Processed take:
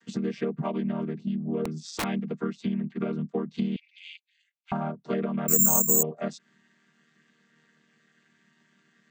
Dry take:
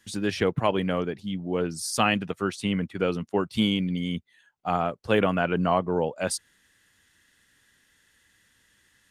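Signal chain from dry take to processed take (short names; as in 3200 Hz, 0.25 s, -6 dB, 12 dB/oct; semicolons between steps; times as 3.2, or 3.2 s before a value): chord vocoder major triad, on D#3; 3.76–4.72 elliptic high-pass 2300 Hz, stop band 80 dB; compressor 4:1, threshold -36 dBFS, peak gain reduction 16 dB; 1.64–2.04 wrapped overs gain 31 dB; 5.48–6.03 careless resampling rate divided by 6×, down filtered, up zero stuff; gain +8 dB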